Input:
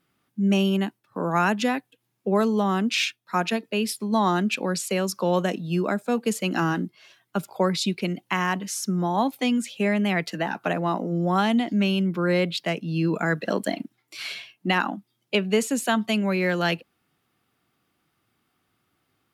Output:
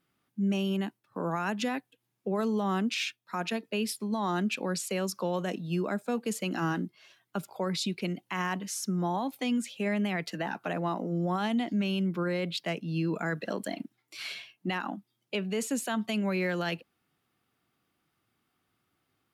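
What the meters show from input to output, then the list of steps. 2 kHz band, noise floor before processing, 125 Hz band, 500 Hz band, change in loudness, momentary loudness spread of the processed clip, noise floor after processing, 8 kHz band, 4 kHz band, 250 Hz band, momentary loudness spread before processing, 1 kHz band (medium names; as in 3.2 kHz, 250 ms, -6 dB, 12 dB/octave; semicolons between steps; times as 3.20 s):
-8.0 dB, -74 dBFS, -6.5 dB, -7.5 dB, -7.0 dB, 9 LU, -79 dBFS, -5.5 dB, -7.0 dB, -6.5 dB, 9 LU, -8.0 dB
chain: peak limiter -17 dBFS, peak gain reduction 8 dB; trim -5 dB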